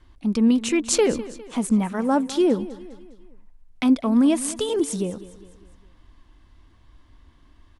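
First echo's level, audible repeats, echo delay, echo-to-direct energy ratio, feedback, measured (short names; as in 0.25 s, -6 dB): -17.0 dB, 3, 0.203 s, -16.0 dB, 48%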